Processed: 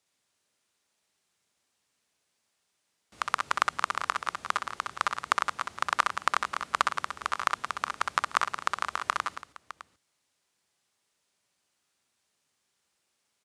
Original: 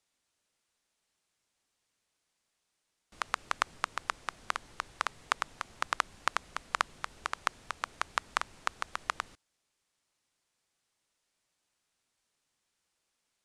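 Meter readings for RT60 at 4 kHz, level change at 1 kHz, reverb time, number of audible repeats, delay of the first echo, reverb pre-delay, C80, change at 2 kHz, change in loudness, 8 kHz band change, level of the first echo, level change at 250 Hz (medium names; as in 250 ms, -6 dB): no reverb, +7.0 dB, no reverb, 3, 61 ms, no reverb, no reverb, +5.0 dB, +6.0 dB, +4.0 dB, -6.5 dB, +4.0 dB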